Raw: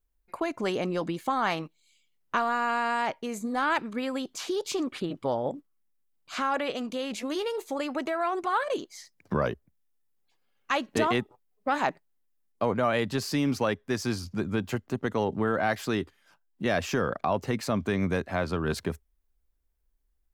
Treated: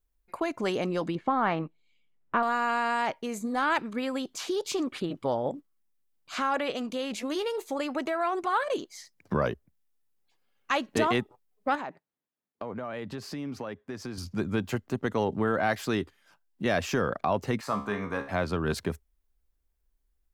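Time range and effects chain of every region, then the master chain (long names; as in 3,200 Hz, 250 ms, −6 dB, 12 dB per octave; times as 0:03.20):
0:01.15–0:02.43: low-pass filter 2,100 Hz + low-shelf EQ 480 Hz +4.5 dB
0:11.75–0:14.18: high-pass filter 100 Hz + high-shelf EQ 3,600 Hz −11.5 dB + downward compressor 5 to 1, threshold −33 dBFS
0:17.61–0:18.29: parametric band 1,100 Hz +14 dB 1.2 octaves + tuned comb filter 69 Hz, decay 0.43 s, mix 80%
whole clip: no processing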